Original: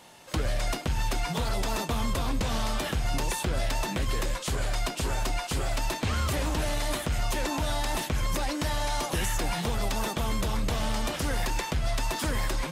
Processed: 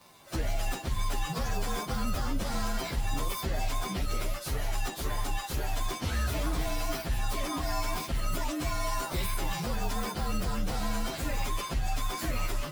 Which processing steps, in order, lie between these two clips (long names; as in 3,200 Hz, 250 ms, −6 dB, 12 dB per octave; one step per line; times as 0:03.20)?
partials spread apart or drawn together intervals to 112%